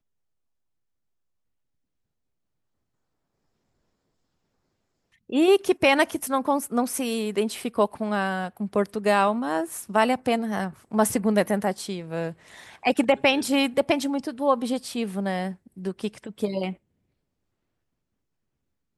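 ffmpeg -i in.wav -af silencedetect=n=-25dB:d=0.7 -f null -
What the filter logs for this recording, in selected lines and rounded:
silence_start: 0.00
silence_end: 5.33 | silence_duration: 5.33
silence_start: 16.70
silence_end: 18.97 | silence_duration: 2.28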